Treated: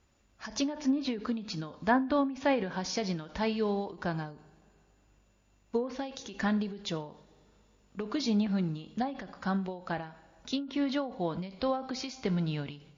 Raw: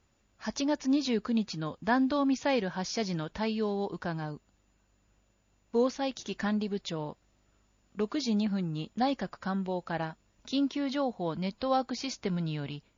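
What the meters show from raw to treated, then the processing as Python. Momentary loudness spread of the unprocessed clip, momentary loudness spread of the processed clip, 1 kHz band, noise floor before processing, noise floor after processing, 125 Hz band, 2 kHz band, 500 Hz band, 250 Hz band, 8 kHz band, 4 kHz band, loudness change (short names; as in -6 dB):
9 LU, 10 LU, -1.5 dB, -70 dBFS, -67 dBFS, 0.0 dB, 0.0 dB, -1.5 dB, -1.0 dB, n/a, -1.5 dB, -1.0 dB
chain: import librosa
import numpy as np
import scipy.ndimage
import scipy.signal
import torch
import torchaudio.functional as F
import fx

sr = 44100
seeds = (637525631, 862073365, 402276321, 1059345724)

y = fx.rev_double_slope(x, sr, seeds[0], early_s=0.5, late_s=2.7, knee_db=-18, drr_db=13.0)
y = fx.env_lowpass_down(y, sr, base_hz=1800.0, full_db=-21.5)
y = fx.end_taper(y, sr, db_per_s=110.0)
y = y * librosa.db_to_amplitude(1.5)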